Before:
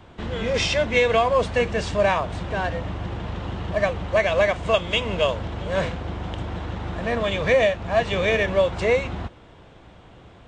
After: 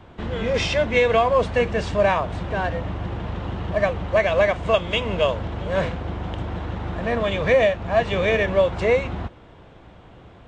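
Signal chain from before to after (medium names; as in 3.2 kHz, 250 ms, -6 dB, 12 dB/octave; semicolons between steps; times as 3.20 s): treble shelf 3.8 kHz -7.5 dB; trim +1.5 dB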